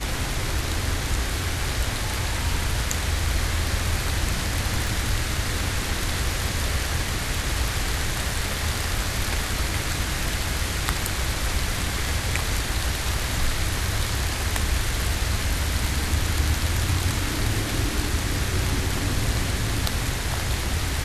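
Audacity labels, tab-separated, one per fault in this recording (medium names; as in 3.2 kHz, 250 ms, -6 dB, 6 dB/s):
4.870000	4.870000	pop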